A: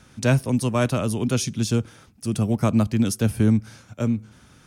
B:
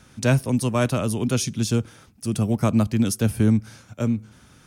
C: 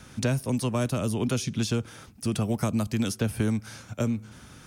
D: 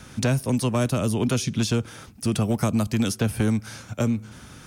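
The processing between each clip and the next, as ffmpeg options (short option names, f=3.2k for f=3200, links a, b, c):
-af "highshelf=f=11k:g=4"
-filter_complex "[0:a]acrossover=split=490|4500[a][b][c];[a]acompressor=threshold=-29dB:ratio=4[d];[b]acompressor=threshold=-37dB:ratio=4[e];[c]acompressor=threshold=-43dB:ratio=4[f];[d][e][f]amix=inputs=3:normalize=0,volume=3.5dB"
-af "asoftclip=type=hard:threshold=-18.5dB,volume=4dB"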